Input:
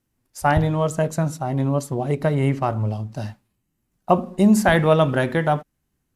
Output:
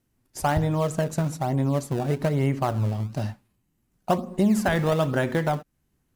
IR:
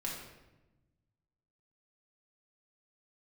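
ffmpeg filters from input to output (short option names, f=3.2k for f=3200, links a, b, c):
-filter_complex "[0:a]acompressor=threshold=-26dB:ratio=2,asplit=2[a][b];[b]acrusher=samples=24:mix=1:aa=0.000001:lfo=1:lforange=38.4:lforate=1.1,volume=-10dB[c];[a][c]amix=inputs=2:normalize=0"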